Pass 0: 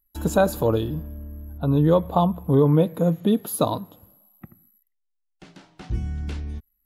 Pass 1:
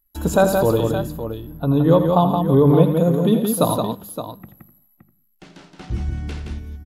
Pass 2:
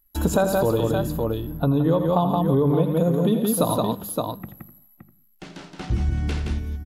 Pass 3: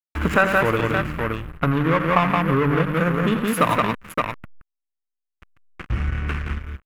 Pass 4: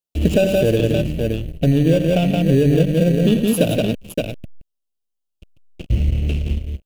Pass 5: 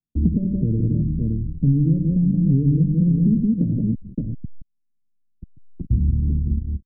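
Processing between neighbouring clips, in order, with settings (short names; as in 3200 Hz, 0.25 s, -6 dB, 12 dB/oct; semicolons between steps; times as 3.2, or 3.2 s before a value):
notches 50/100/150/200 Hz; on a send: tapped delay 83/171/568 ms -11/-5/-10.5 dB; on the sum: gain +3 dB
compressor 4:1, threshold -22 dBFS, peak gain reduction 12 dB; gain +4 dB
backlash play -22 dBFS; band shelf 1800 Hz +15.5 dB
elliptic band-stop 630–2800 Hz, stop band 40 dB; in parallel at -12 dB: sample-and-hold 21×; on the sum: gain +4.5 dB
inverse Chebyshev low-pass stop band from 890 Hz, stop band 60 dB; three-band squash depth 40%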